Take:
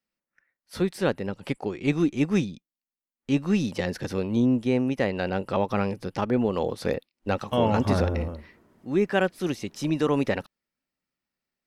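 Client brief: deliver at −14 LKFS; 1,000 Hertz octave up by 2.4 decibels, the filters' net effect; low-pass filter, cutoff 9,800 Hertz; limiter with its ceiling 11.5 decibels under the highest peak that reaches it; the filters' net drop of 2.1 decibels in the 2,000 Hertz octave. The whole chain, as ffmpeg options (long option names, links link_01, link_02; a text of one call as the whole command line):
ffmpeg -i in.wav -af "lowpass=9800,equalizer=frequency=1000:width_type=o:gain=4,equalizer=frequency=2000:width_type=o:gain=-4.5,volume=17.5dB,alimiter=limit=-3dB:level=0:latency=1" out.wav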